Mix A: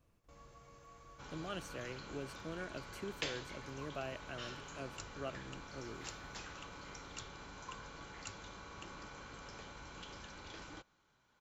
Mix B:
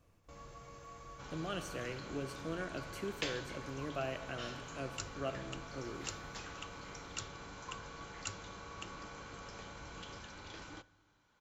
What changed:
first sound +6.5 dB; reverb: on, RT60 1.5 s

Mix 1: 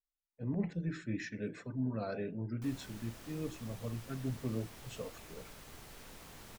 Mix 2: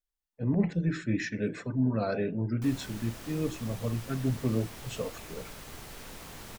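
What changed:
speech +8.5 dB; background +7.5 dB

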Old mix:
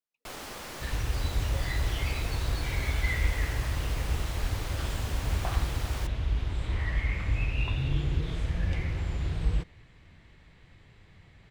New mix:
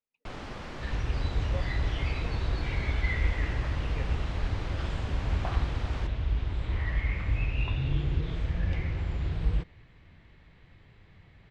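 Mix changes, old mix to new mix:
speech +6.0 dB; first sound: add tone controls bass +9 dB, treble -4 dB; master: add air absorption 120 m

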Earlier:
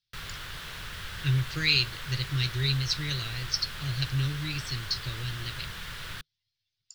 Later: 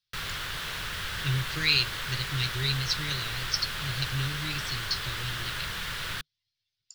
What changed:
background +6.0 dB; master: add low shelf 180 Hz -5 dB

